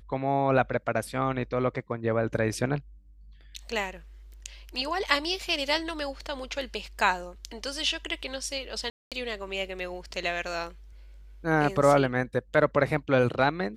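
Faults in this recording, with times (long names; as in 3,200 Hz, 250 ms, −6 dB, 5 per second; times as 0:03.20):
0:08.90–0:09.12: drop-out 217 ms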